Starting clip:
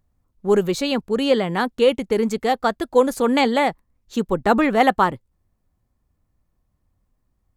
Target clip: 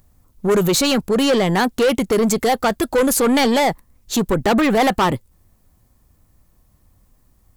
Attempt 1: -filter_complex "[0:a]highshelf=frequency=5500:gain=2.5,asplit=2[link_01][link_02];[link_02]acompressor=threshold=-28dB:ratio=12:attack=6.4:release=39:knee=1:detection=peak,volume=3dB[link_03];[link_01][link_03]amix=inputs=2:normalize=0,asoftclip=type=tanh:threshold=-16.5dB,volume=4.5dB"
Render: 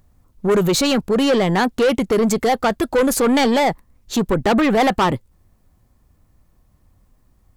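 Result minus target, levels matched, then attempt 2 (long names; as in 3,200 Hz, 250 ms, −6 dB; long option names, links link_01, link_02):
8,000 Hz band −3.0 dB
-filter_complex "[0:a]highshelf=frequency=5500:gain=11,asplit=2[link_01][link_02];[link_02]acompressor=threshold=-28dB:ratio=12:attack=6.4:release=39:knee=1:detection=peak,volume=3dB[link_03];[link_01][link_03]amix=inputs=2:normalize=0,asoftclip=type=tanh:threshold=-16.5dB,volume=4.5dB"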